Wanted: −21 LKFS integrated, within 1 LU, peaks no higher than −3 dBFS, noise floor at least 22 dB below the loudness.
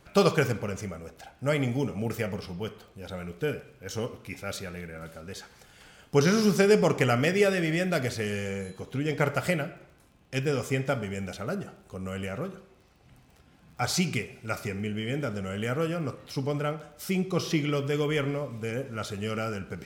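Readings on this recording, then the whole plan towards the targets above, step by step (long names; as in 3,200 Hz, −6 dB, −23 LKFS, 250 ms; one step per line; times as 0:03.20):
crackle rate 23 per second; integrated loudness −29.0 LKFS; sample peak −8.0 dBFS; target loudness −21.0 LKFS
→ click removal
level +8 dB
brickwall limiter −3 dBFS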